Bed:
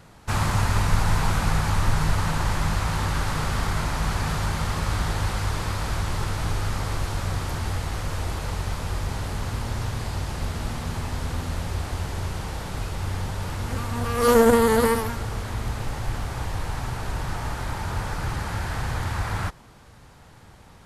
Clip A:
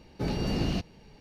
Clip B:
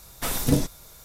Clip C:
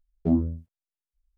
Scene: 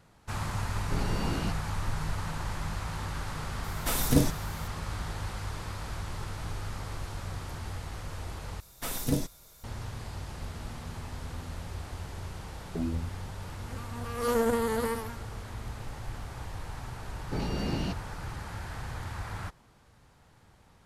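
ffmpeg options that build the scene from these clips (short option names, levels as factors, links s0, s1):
-filter_complex "[1:a]asplit=2[s0][s1];[2:a]asplit=2[s2][s3];[0:a]volume=0.299[s4];[3:a]alimiter=limit=0.0708:level=0:latency=1:release=71[s5];[s4]asplit=2[s6][s7];[s6]atrim=end=8.604[s8];[s3]atrim=end=1.04,asetpts=PTS-STARTPTS,volume=0.447[s9];[s7]atrim=start=9.636[s10];[s0]atrim=end=1.2,asetpts=PTS-STARTPTS,volume=0.596,afade=t=in:d=0.004:c=hsin,afade=t=out:st=1.196:d=0.004:c=hsin,adelay=710[s11];[s2]atrim=end=1.04,asetpts=PTS-STARTPTS,volume=0.794,afade=t=in:d=0.004:c=hsin,afade=t=out:st=1.036:d=0.004:c=hsin,adelay=3640[s12];[s5]atrim=end=1.37,asetpts=PTS-STARTPTS,volume=0.794,afade=t=in:d=0.004:c=hsin,afade=t=out:st=1.366:d=0.004:c=hsin,adelay=12500[s13];[s1]atrim=end=1.2,asetpts=PTS-STARTPTS,volume=0.708,afade=t=in:d=0.004:c=hsin,afade=t=out:st=1.196:d=0.004:c=hsin,adelay=17120[s14];[s8][s9]acrossfade=d=0.004:c1=hsin:c2=hsin[s15];[s15][s10]acrossfade=d=0.004:c1=hsin:c2=hsin[s16];[s16][s11][s12][s13][s14]amix=inputs=5:normalize=0"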